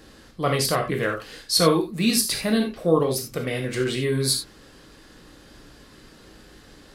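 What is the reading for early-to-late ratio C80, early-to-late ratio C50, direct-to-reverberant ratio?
14.5 dB, 8.5 dB, 2.0 dB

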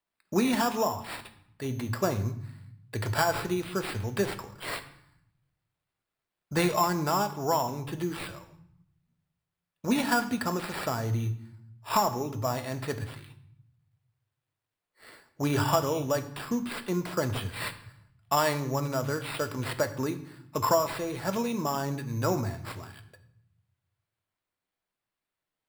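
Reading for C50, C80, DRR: 13.5 dB, 16.0 dB, 8.5 dB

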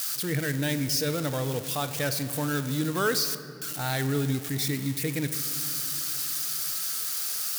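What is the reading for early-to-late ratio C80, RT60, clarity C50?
12.5 dB, 2.6 s, 11.5 dB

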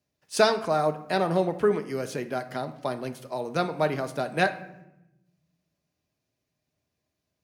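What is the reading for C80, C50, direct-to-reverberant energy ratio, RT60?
16.0 dB, 13.0 dB, 8.5 dB, 0.90 s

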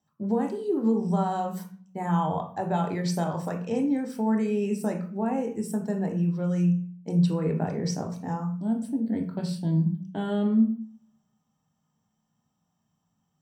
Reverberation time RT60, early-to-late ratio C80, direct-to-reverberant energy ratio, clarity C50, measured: 0.45 s, 13.5 dB, 3.0 dB, 9.0 dB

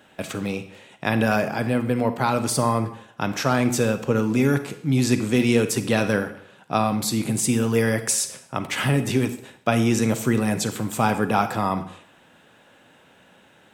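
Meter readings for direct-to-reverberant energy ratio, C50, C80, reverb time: 10.0 dB, 11.5 dB, 14.5 dB, 0.65 s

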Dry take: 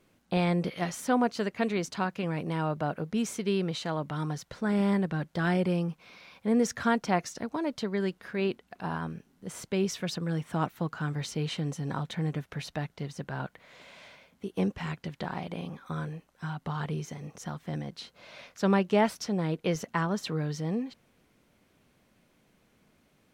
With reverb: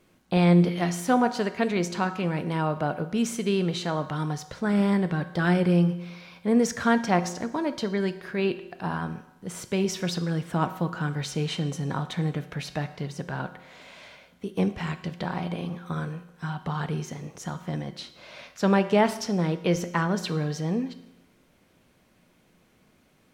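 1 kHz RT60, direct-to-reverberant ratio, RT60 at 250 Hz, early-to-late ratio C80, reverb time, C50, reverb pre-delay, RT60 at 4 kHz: 0.95 s, 10.0 dB, 0.95 s, 15.0 dB, 0.90 s, 13.0 dB, 5 ms, 0.90 s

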